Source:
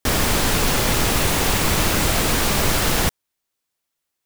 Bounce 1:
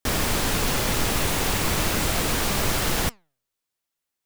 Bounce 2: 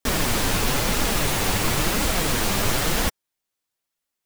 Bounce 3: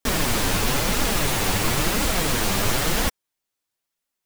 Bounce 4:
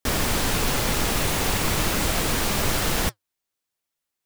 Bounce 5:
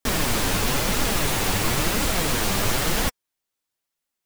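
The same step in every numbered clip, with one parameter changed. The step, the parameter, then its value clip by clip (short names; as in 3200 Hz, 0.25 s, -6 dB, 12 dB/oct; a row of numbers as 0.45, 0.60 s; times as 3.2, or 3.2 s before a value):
flange, regen: +90, -15, +6, -72, +35%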